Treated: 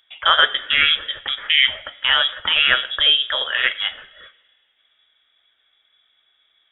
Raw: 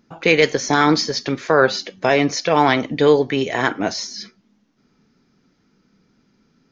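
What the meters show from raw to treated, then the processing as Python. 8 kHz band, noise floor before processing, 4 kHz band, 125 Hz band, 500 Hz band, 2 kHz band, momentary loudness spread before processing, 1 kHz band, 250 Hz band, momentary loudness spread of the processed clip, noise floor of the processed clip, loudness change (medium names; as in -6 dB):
no reading, -63 dBFS, +11.0 dB, under -20 dB, -17.5 dB, +3.0 dB, 8 LU, -5.0 dB, under -25 dB, 9 LU, -65 dBFS, +1.0 dB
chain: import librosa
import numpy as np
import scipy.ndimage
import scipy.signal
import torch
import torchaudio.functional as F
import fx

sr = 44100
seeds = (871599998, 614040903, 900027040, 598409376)

y = fx.freq_invert(x, sr, carrier_hz=3600)
y = fx.graphic_eq_15(y, sr, hz=(160, 630, 1600), db=(-11, 7, 10))
y = fx.rev_double_slope(y, sr, seeds[0], early_s=0.77, late_s=2.4, knee_db=-17, drr_db=15.5)
y = F.gain(torch.from_numpy(y), -4.0).numpy()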